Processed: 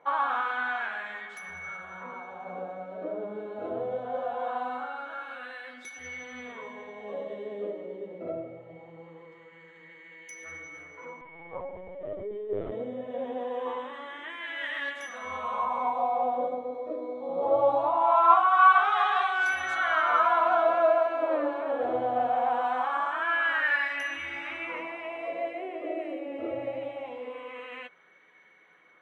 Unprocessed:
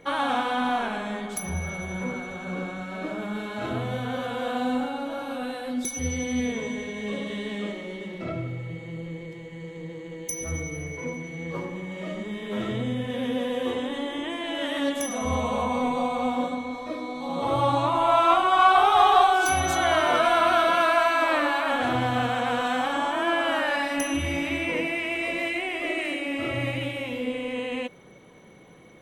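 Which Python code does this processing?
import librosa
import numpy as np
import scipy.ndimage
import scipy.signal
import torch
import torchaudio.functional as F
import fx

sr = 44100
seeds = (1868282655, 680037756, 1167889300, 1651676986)

y = fx.wah_lfo(x, sr, hz=0.22, low_hz=480.0, high_hz=1800.0, q=2.9)
y = fx.chorus_voices(y, sr, voices=6, hz=0.17, base_ms=11, depth_ms=1.6, mix_pct=30)
y = fx.lpc_vocoder(y, sr, seeds[0], excitation='pitch_kept', order=16, at=(11.21, 12.72))
y = y * librosa.db_to_amplitude(6.0)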